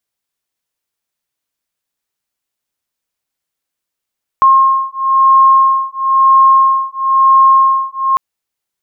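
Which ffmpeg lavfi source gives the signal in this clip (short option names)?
-f lavfi -i "aevalsrc='0.335*(sin(2*PI*1070*t)+sin(2*PI*1071*t))':d=3.75:s=44100"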